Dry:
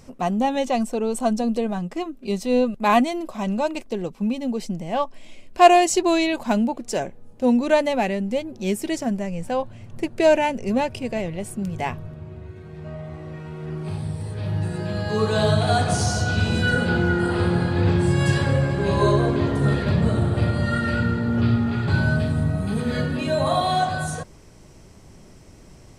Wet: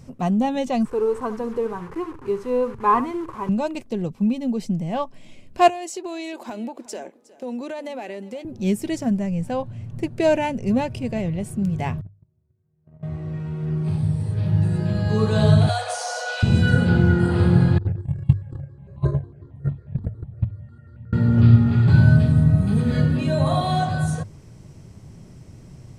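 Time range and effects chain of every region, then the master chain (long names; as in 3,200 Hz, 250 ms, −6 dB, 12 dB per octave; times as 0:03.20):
0:00.85–0:03.49: linear delta modulator 64 kbit/s, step −31.5 dBFS + drawn EQ curve 130 Hz 0 dB, 190 Hz −16 dB, 430 Hz +7 dB, 660 Hz −12 dB, 990 Hz +9 dB, 3,700 Hz −14 dB + single-tap delay 70 ms −14 dB
0:05.68–0:08.45: high-pass filter 310 Hz 24 dB per octave + downward compressor 5 to 1, threshold −27 dBFS + single-tap delay 362 ms −19 dB
0:12.01–0:13.03: noise gate −31 dBFS, range −36 dB + parametric band 4,500 Hz −11.5 dB 2.4 octaves
0:15.69–0:16.43: Chebyshev high-pass filter 480 Hz, order 8 + multiband upward and downward compressor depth 70%
0:17.78–0:21.13: noise gate −16 dBFS, range −28 dB + spectral tilt −2 dB per octave + step-sequenced phaser 11 Hz 600–1,600 Hz
whole clip: parametric band 120 Hz +13.5 dB 1.7 octaves; mains-hum notches 50/100 Hz; level −3.5 dB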